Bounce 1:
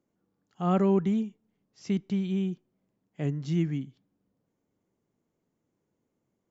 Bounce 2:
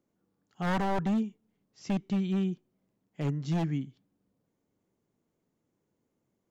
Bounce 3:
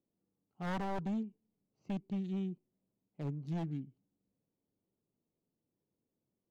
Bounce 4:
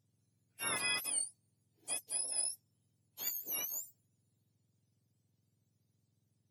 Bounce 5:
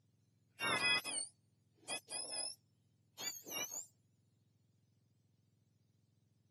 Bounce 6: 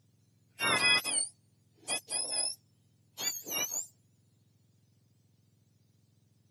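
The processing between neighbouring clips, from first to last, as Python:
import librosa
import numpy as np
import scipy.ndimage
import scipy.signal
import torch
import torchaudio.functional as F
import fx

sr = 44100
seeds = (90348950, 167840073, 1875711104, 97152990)

y1 = 10.0 ** (-23.0 / 20.0) * (np.abs((x / 10.0 ** (-23.0 / 20.0) + 3.0) % 4.0 - 2.0) - 1.0)
y2 = fx.wiener(y1, sr, points=25)
y2 = y2 * 10.0 ** (-8.0 / 20.0)
y3 = fx.octave_mirror(y2, sr, pivot_hz=1400.0)
y3 = y3 * 10.0 ** (5.5 / 20.0)
y4 = scipy.signal.sosfilt(scipy.signal.butter(2, 6100.0, 'lowpass', fs=sr, output='sos'), y3)
y4 = y4 * 10.0 ** (2.0 / 20.0)
y5 = fx.high_shelf(y4, sr, hz=5300.0, db=4.5)
y5 = y5 * 10.0 ** (7.5 / 20.0)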